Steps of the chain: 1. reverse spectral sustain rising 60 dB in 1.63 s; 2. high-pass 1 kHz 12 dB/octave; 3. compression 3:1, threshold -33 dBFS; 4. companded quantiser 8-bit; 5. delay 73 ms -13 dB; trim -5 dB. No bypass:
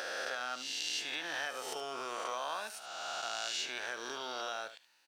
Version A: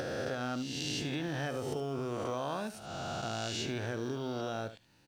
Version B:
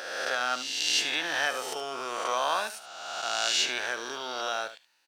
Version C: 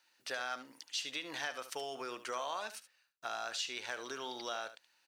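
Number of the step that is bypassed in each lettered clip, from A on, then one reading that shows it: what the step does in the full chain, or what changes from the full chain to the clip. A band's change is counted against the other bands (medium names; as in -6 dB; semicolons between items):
2, 250 Hz band +19.5 dB; 3, mean gain reduction 7.0 dB; 1, 250 Hz band +4.5 dB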